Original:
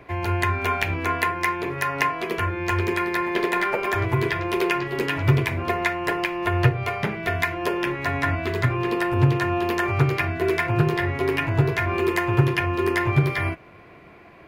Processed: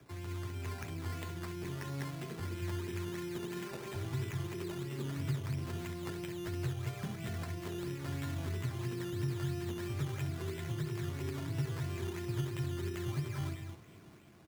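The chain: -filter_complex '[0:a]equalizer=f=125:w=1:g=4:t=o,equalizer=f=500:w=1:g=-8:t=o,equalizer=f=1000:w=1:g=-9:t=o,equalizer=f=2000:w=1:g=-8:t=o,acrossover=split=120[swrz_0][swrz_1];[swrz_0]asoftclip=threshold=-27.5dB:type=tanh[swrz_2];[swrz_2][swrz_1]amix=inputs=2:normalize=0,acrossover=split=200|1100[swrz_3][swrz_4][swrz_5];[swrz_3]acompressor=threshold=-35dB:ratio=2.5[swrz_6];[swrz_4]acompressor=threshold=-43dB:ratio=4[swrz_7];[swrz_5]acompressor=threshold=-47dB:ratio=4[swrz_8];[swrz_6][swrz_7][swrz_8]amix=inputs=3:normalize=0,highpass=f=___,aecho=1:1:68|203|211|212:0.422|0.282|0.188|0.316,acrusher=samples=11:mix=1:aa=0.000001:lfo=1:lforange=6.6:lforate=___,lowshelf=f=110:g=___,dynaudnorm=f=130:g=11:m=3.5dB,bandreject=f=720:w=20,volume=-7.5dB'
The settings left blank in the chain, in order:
60, 3, -3.5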